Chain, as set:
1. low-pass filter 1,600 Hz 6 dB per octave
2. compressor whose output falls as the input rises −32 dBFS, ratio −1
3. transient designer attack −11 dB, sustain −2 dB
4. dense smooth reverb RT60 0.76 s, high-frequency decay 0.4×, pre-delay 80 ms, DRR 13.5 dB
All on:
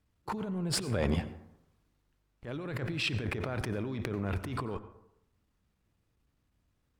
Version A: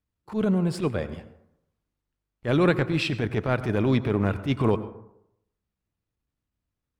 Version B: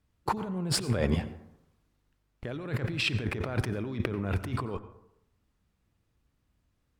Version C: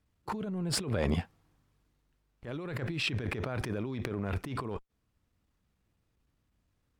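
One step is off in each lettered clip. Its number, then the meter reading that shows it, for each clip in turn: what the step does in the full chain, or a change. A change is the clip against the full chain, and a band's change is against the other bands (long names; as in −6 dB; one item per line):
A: 2, change in crest factor −6.0 dB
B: 3, change in integrated loudness +3.0 LU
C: 4, change in momentary loudness spread −2 LU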